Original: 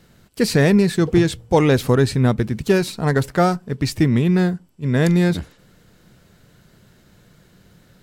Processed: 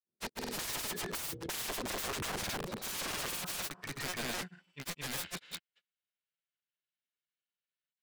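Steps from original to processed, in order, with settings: gate -42 dBFS, range -37 dB; harmonic-percussive split harmonic +9 dB; band-pass sweep 350 Hz -> 2800 Hz, 2.3–4.74; wrapped overs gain 31 dB; grains, spray 0.213 s

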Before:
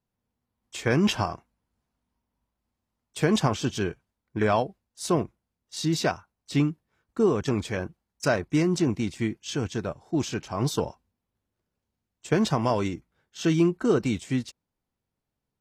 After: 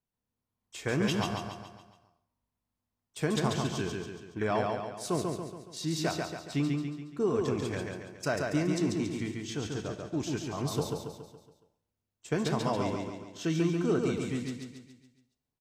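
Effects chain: high shelf 9300 Hz +3.5 dB; feedback echo 0.14 s, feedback 49%, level -3.5 dB; on a send at -11.5 dB: reverb, pre-delay 3 ms; on the sum: gain -7.5 dB

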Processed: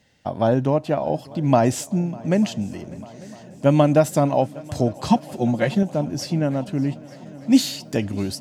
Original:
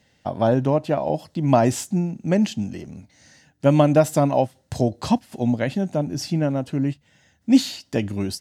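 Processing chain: 5.09–5.83 comb 5.6 ms, depth 95%; 7.5–7.96 high shelf 7700 Hz -> 5000 Hz +8 dB; multi-head echo 0.299 s, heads second and third, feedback 69%, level -23 dB

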